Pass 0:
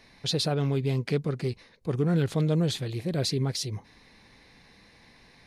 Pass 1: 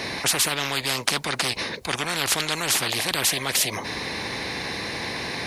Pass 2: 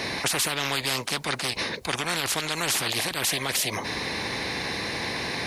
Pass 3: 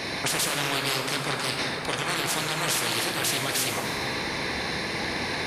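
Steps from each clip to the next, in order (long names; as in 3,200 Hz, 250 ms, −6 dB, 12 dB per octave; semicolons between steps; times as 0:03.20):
high-pass filter 100 Hz 12 dB per octave; parametric band 340 Hz +6 dB 0.79 octaves; every bin compressed towards the loudest bin 10 to 1; level +9 dB
brickwall limiter −14.5 dBFS, peak gain reduction 11 dB
convolution reverb RT60 4.3 s, pre-delay 8 ms, DRR 0 dB; level −2 dB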